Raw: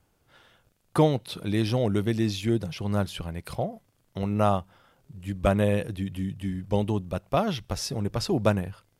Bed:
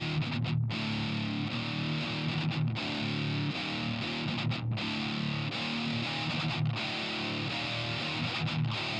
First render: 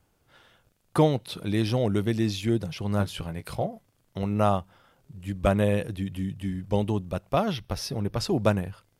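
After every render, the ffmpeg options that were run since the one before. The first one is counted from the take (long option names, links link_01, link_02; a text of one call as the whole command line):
ffmpeg -i in.wav -filter_complex "[0:a]asettb=1/sr,asplit=3[link_01][link_02][link_03];[link_01]atrim=end=2.984[link_04];[link_02]atrim=start=2.98:end=3.67,asetpts=PTS-STARTPTS,afade=type=in:duration=0.004:curve=qsin,afade=type=out:start_time=0.686:duration=0.004:curve=qsin,asplit=2[link_05][link_06];[link_06]adelay=19,volume=-8dB[link_07];[link_05][link_07]amix=inputs=2:normalize=0,atrim=end_sample=30429[link_08];[link_03]atrim=start=3.666[link_09];[link_04][link_08]acrossfade=duration=0.004:curve1=hsin:curve2=qsin[link_10];[link_10][link_09]acrossfade=duration=0.004:curve1=qsin:curve2=hsin,asettb=1/sr,asplit=3[link_11][link_12][link_13];[link_11]atrim=end=7.524[link_14];[link_12]atrim=start=7.52:end=8.18,asetpts=PTS-STARTPTS,afade=type=in:duration=0.004:curve=qsin,afade=type=out:start_time=0.656:duration=0.004:curve=qsin,equalizer=frequency=7400:width_type=o:width=0.28:gain=-14[link_15];[link_13]atrim=start=8.176[link_16];[link_14][link_15]acrossfade=duration=0.004:curve1=hsin:curve2=qsin[link_17];[link_17][link_16]acrossfade=duration=0.004:curve1=qsin:curve2=hsin" out.wav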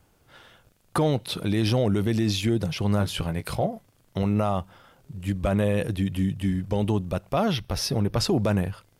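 ffmpeg -i in.wav -af "acontrast=50,alimiter=limit=-15dB:level=0:latency=1:release=35" out.wav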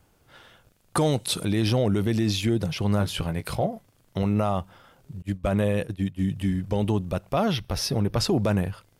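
ffmpeg -i in.wav -filter_complex "[0:a]asettb=1/sr,asplit=3[link_01][link_02][link_03];[link_01]atrim=end=0.974[link_04];[link_02]atrim=start=0.97:end=1.45,asetpts=PTS-STARTPTS,afade=type=in:duration=0.004:curve=qsin,afade=type=out:start_time=0.476:duration=0.004:curve=qsin,equalizer=frequency=8100:width=0.95:gain=13.5[link_05];[link_03]atrim=start=1.446[link_06];[link_04][link_05]acrossfade=duration=0.004:curve1=hsin:curve2=qsin[link_07];[link_07][link_06]acrossfade=duration=0.004:curve1=qsin:curve2=hsin,asettb=1/sr,asplit=3[link_08][link_09][link_10];[link_08]atrim=end=5.224[link_11];[link_09]atrim=start=5.22:end=6.28,asetpts=PTS-STARTPTS,afade=type=in:duration=0.004:curve=qsin,afade=type=out:start_time=1.056:duration=0.004:curve=qsin,agate=range=-33dB:threshold=-23dB:ratio=3:release=100:detection=peak[link_12];[link_10]atrim=start=6.276[link_13];[link_11][link_12]acrossfade=duration=0.004:curve1=hsin:curve2=qsin[link_14];[link_14][link_13]acrossfade=duration=0.004:curve1=qsin:curve2=hsin" out.wav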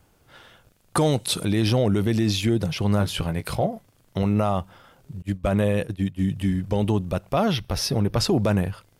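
ffmpeg -i in.wav -af "volume=2dB" out.wav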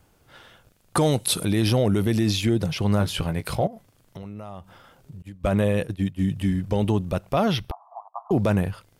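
ffmpeg -i in.wav -filter_complex "[0:a]asettb=1/sr,asplit=3[link_01][link_02][link_03];[link_01]atrim=end=1.034[link_04];[link_02]atrim=start=1.03:end=2.31,asetpts=PTS-STARTPTS,afade=type=in:duration=0.004:curve=qsin,afade=type=out:start_time=1.276:duration=0.004:curve=qsin,equalizer=frequency=11000:width_type=o:width=0.45:gain=7[link_05];[link_03]atrim=start=2.306[link_06];[link_04][link_05]acrossfade=duration=0.004:curve1=hsin:curve2=qsin[link_07];[link_07][link_06]acrossfade=duration=0.004:curve1=qsin:curve2=hsin,asettb=1/sr,asplit=3[link_08][link_09][link_10];[link_08]atrim=end=3.674[link_11];[link_09]atrim=start=3.67:end=5.41,asetpts=PTS-STARTPTS,afade=type=in:duration=0.004:curve=qsin,afade=type=out:start_time=1.736:duration=0.004:curve=qsin,acompressor=threshold=-37dB:ratio=4:attack=3.2:release=140:knee=1:detection=peak[link_12];[link_10]atrim=start=5.406[link_13];[link_11][link_12]acrossfade=duration=0.004:curve1=hsin:curve2=qsin[link_14];[link_14][link_13]acrossfade=duration=0.004:curve1=qsin:curve2=hsin,asettb=1/sr,asplit=3[link_15][link_16][link_17];[link_15]atrim=end=7.714[link_18];[link_16]atrim=start=7.71:end=8.31,asetpts=PTS-STARTPTS,afade=type=in:duration=0.004:curve=qsin,afade=type=out:start_time=0.596:duration=0.004:curve=qsin,asuperpass=centerf=890:order=12:qfactor=1.8[link_19];[link_17]atrim=start=8.306[link_20];[link_18][link_19]acrossfade=duration=0.004:curve1=hsin:curve2=qsin[link_21];[link_21][link_20]acrossfade=duration=0.004:curve1=qsin:curve2=hsin" out.wav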